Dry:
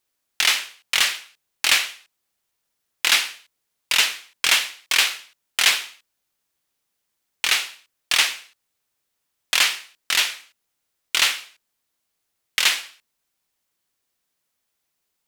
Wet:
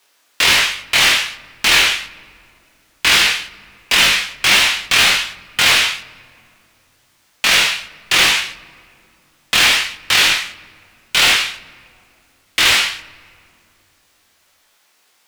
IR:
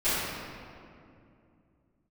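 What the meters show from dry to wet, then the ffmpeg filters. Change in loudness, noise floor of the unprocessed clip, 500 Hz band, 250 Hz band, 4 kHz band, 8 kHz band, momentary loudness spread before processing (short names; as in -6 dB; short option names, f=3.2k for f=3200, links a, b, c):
+7.0 dB, -77 dBFS, +12.5 dB, +17.0 dB, +7.5 dB, +5.0 dB, 13 LU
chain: -filter_complex "[0:a]afreqshift=25,asplit=2[a][b];[b]highpass=f=720:p=1,volume=32dB,asoftclip=type=tanh:threshold=-1.5dB[c];[a][c]amix=inputs=2:normalize=0,lowpass=f=4k:p=1,volume=-6dB,flanger=delay=20:depth=2.8:speed=1.3,asplit=2[d][e];[1:a]atrim=start_sample=2205,lowshelf=f=130:g=7,adelay=36[f];[e][f]afir=irnorm=-1:irlink=0,volume=-33dB[g];[d][g]amix=inputs=2:normalize=0,volume=1.5dB"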